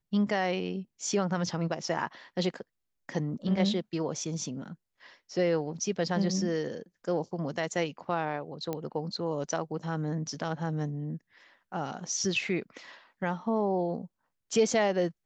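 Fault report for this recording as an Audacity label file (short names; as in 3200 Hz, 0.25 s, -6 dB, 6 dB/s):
8.730000	8.730000	pop -19 dBFS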